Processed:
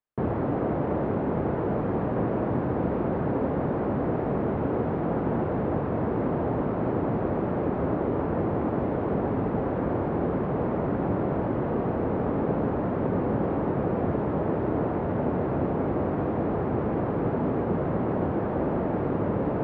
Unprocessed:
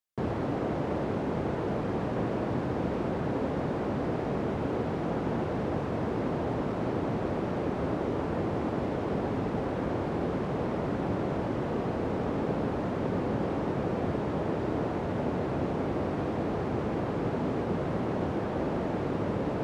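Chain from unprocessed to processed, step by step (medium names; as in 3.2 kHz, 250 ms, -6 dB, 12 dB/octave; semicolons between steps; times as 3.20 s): low-pass 1.6 kHz 12 dB/octave; trim +4 dB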